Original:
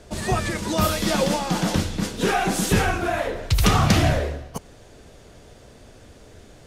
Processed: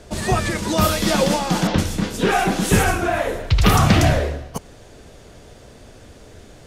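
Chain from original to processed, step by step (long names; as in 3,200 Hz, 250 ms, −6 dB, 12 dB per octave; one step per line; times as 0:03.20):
0:01.67–0:04.05: multiband delay without the direct sound lows, highs 110 ms, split 5,000 Hz
level +3.5 dB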